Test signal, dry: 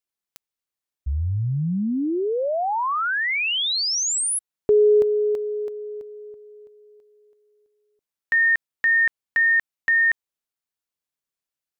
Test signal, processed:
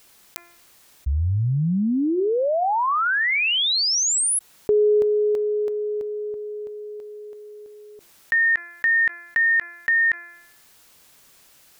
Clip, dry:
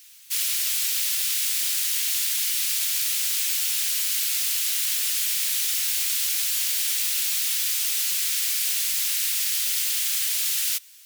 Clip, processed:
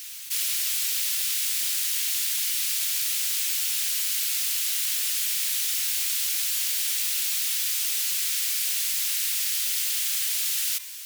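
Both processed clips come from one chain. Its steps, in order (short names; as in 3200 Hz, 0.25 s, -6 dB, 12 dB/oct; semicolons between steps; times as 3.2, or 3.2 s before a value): de-hum 345.2 Hz, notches 7; fast leveller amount 50%; gain -2 dB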